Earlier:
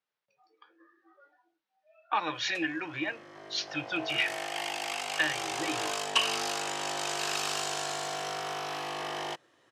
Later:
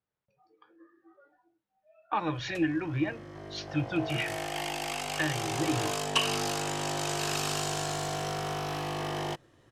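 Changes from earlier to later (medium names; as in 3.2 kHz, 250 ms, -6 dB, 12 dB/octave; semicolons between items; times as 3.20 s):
speech: add treble shelf 2.4 kHz -8.5 dB; master: remove frequency weighting A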